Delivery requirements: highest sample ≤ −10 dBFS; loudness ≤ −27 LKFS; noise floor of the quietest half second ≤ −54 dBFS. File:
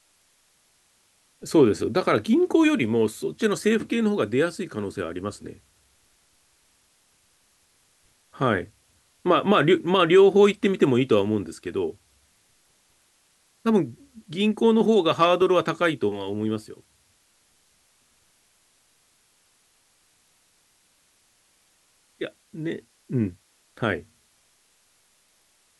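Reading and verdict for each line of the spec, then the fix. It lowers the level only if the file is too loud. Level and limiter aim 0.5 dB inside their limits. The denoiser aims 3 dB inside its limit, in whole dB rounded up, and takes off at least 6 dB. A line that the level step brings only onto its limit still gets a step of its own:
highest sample −6.0 dBFS: out of spec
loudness −22.5 LKFS: out of spec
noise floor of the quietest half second −64 dBFS: in spec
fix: level −5 dB

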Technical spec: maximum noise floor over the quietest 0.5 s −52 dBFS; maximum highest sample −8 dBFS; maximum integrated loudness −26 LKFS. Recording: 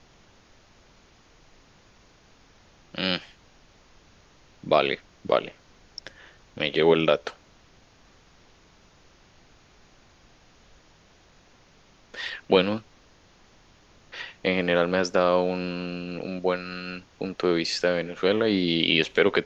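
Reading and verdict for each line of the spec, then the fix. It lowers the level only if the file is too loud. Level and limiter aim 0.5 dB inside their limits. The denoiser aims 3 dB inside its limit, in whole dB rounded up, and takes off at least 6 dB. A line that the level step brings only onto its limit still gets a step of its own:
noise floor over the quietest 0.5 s −57 dBFS: in spec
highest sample −5.5 dBFS: out of spec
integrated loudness −25.0 LKFS: out of spec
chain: level −1.5 dB
brickwall limiter −8.5 dBFS

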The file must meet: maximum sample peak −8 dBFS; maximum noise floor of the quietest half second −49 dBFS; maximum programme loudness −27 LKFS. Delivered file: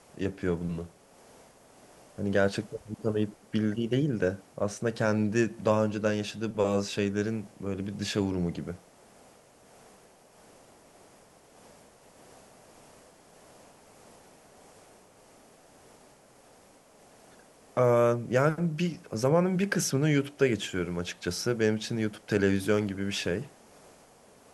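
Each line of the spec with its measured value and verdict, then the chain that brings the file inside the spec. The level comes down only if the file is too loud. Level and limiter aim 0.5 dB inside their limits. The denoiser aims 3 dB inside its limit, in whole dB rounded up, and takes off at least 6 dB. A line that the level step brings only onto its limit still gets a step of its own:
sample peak −10.0 dBFS: in spec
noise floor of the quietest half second −57 dBFS: in spec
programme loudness −29.0 LKFS: in spec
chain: no processing needed

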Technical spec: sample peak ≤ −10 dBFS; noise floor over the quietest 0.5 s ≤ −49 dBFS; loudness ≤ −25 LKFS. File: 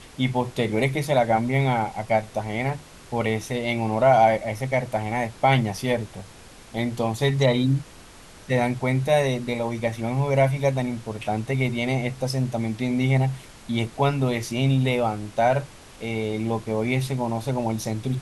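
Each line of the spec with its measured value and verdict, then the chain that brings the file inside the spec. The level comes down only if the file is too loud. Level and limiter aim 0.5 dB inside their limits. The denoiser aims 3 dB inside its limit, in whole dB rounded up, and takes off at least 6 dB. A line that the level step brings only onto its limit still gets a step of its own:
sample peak −5.5 dBFS: out of spec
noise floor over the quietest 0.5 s −46 dBFS: out of spec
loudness −24.0 LKFS: out of spec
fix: broadband denoise 6 dB, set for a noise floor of −46 dBFS
level −1.5 dB
brickwall limiter −10.5 dBFS

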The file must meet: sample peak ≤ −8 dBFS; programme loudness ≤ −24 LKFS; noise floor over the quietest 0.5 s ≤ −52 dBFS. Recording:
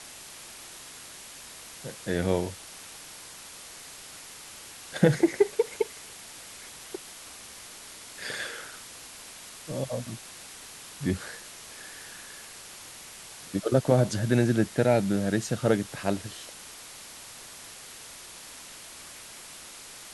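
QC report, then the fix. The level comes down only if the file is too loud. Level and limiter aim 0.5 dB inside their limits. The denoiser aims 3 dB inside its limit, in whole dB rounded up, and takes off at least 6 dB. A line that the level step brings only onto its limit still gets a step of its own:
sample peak −6.5 dBFS: out of spec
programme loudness −28.5 LKFS: in spec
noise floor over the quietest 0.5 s −45 dBFS: out of spec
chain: broadband denoise 10 dB, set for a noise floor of −45 dBFS
brickwall limiter −8.5 dBFS

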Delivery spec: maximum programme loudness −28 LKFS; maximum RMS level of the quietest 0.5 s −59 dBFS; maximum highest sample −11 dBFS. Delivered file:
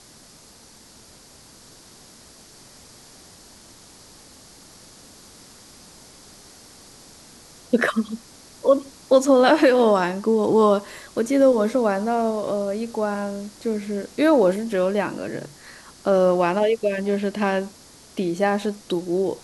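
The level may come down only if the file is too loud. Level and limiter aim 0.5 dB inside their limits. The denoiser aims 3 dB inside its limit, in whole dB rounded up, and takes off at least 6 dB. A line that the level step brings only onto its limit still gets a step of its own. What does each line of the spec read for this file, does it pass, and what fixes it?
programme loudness −21.0 LKFS: out of spec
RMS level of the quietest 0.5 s −49 dBFS: out of spec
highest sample −5.5 dBFS: out of spec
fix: broadband denoise 6 dB, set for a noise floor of −49 dBFS
level −7.5 dB

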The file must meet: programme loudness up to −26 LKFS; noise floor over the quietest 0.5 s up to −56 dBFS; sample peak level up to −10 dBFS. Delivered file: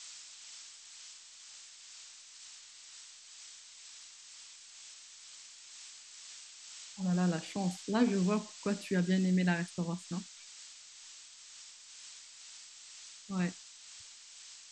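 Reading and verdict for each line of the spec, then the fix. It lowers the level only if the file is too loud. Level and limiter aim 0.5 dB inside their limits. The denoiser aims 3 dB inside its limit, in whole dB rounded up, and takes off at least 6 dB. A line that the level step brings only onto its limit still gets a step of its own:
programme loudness −34.5 LKFS: in spec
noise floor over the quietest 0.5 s −53 dBFS: out of spec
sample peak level −16.0 dBFS: in spec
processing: broadband denoise 6 dB, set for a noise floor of −53 dBFS

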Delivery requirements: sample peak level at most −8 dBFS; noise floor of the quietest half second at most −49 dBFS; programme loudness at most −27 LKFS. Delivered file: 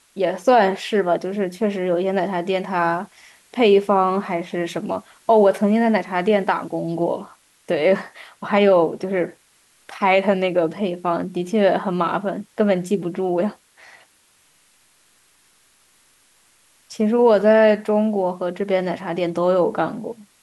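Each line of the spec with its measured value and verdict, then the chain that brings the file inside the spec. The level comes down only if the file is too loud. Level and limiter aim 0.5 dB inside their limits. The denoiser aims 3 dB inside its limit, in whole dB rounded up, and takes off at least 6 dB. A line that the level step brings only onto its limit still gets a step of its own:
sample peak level −5.5 dBFS: out of spec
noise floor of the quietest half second −58 dBFS: in spec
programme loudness −20.0 LKFS: out of spec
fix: level −7.5 dB

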